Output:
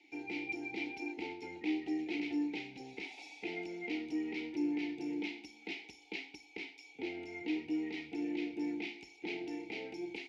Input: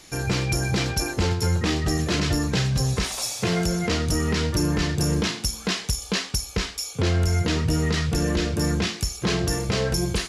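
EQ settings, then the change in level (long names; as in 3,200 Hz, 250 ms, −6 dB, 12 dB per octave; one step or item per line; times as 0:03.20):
formant filter u
Butterworth band-reject 1,100 Hz, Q 1.2
three-way crossover with the lows and the highs turned down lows −23 dB, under 370 Hz, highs −15 dB, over 5,400 Hz
+4.0 dB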